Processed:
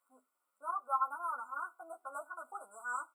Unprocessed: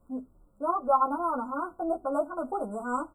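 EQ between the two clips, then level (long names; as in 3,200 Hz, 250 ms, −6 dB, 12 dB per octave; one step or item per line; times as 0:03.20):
high-pass with resonance 2,000 Hz, resonance Q 2.9
0.0 dB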